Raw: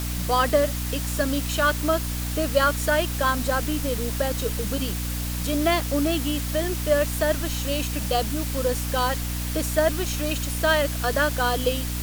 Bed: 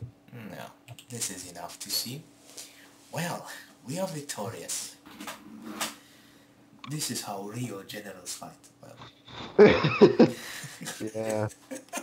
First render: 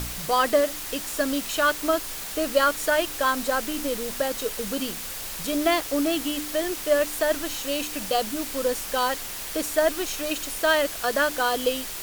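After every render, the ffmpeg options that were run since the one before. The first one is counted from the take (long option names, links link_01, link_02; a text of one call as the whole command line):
ffmpeg -i in.wav -af "bandreject=frequency=60:width_type=h:width=4,bandreject=frequency=120:width_type=h:width=4,bandreject=frequency=180:width_type=h:width=4,bandreject=frequency=240:width_type=h:width=4,bandreject=frequency=300:width_type=h:width=4" out.wav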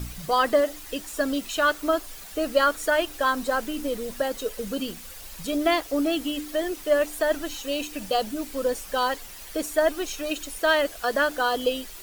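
ffmpeg -i in.wav -af "afftdn=noise_reduction=10:noise_floor=-35" out.wav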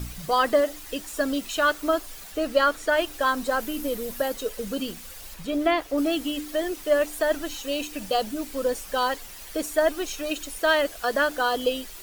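ffmpeg -i in.wav -filter_complex "[0:a]asettb=1/sr,asplit=3[link_01][link_02][link_03];[link_01]atrim=end=2.314[link_04];[link_02]atrim=start=2.31:end=2.97,asetpts=PTS-STARTPTS,afade=type=in:duration=0.004:curve=qsin,afade=type=out:start_time=0.656:duration=0.004:curve=qsin,acrossover=split=5800[link_05][link_06];[link_06]acompressor=threshold=-43dB:ratio=4:attack=1:release=60[link_07];[link_05][link_07]amix=inputs=2:normalize=0[link_08];[link_03]atrim=start=2.966[link_09];[link_04][link_08]acrossfade=duration=0.004:curve1=hsin:curve2=qsin[link_10];[link_10][link_09]acrossfade=duration=0.004:curve1=qsin:curve2=hsin,asettb=1/sr,asplit=3[link_11][link_12][link_13];[link_11]atrim=end=3.604[link_14];[link_12]atrim=start=3.6:end=4.34,asetpts=PTS-STARTPTS,afade=type=in:duration=0.004:curve=qsin,afade=type=out:start_time=0.736:duration=0.004:curve=qsin,equalizer=frequency=13000:width_type=o:width=0.44:gain=8.5[link_15];[link_13]atrim=start=4.336[link_16];[link_14][link_15]acrossfade=duration=0.004:curve1=hsin:curve2=qsin[link_17];[link_17][link_16]acrossfade=duration=0.004:curve1=qsin:curve2=hsin,asettb=1/sr,asplit=3[link_18][link_19][link_20];[link_18]atrim=end=5.344[link_21];[link_19]atrim=start=5.34:end=5.98,asetpts=PTS-STARTPTS,afade=type=in:duration=0.004:curve=qsin,afade=type=out:start_time=0.636:duration=0.004:curve=qsin,acrossover=split=3400[link_22][link_23];[link_23]acompressor=threshold=-45dB:ratio=4:attack=1:release=60[link_24];[link_22][link_24]amix=inputs=2:normalize=0[link_25];[link_20]atrim=start=5.976[link_26];[link_21][link_25]acrossfade=duration=0.004:curve1=hsin:curve2=qsin[link_27];[link_27][link_26]acrossfade=duration=0.004:curve1=qsin:curve2=hsin" out.wav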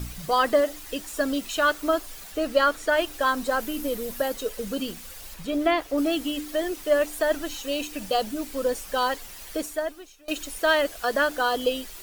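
ffmpeg -i in.wav -filter_complex "[0:a]asplit=2[link_01][link_02];[link_01]atrim=end=10.28,asetpts=PTS-STARTPTS,afade=type=out:start_time=9.55:duration=0.73:curve=qua:silence=0.0707946[link_03];[link_02]atrim=start=10.28,asetpts=PTS-STARTPTS,afade=type=in:duration=0.004:curve=hsin:silence=0.0707946[link_04];[link_03][link_04]concat=n=2:v=0:a=1" out.wav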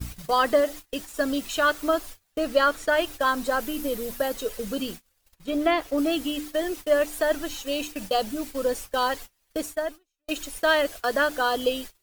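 ffmpeg -i in.wav -af "agate=range=-30dB:threshold=-36dB:ratio=16:detection=peak,equalizer=frequency=92:width_type=o:width=0.22:gain=8.5" out.wav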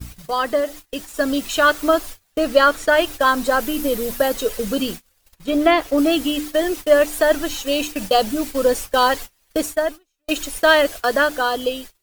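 ffmpeg -i in.wav -af "dynaudnorm=framelen=320:gausssize=7:maxgain=9.5dB" out.wav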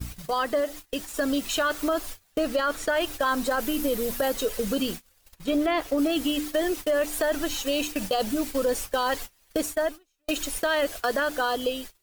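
ffmpeg -i in.wav -af "alimiter=limit=-11.5dB:level=0:latency=1:release=18,acompressor=threshold=-30dB:ratio=1.5" out.wav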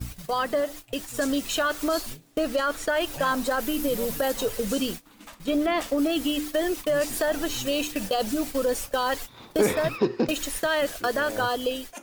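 ffmpeg -i in.wav -i bed.wav -filter_complex "[1:a]volume=-6.5dB[link_01];[0:a][link_01]amix=inputs=2:normalize=0" out.wav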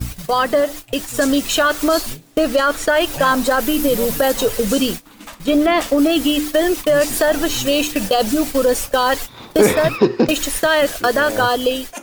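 ffmpeg -i in.wav -af "volume=9.5dB,alimiter=limit=-1dB:level=0:latency=1" out.wav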